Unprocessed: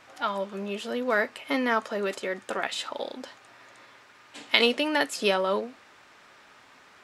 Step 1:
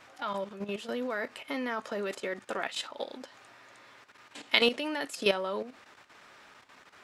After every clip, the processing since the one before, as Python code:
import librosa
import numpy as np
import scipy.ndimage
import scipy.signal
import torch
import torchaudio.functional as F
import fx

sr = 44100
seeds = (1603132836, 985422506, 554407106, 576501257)

y = fx.level_steps(x, sr, step_db=11)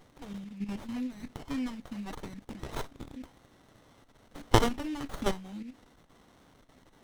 y = fx.brickwall_bandstop(x, sr, low_hz=320.0, high_hz=1900.0)
y = fx.running_max(y, sr, window=17)
y = y * 10.0 ** (4.0 / 20.0)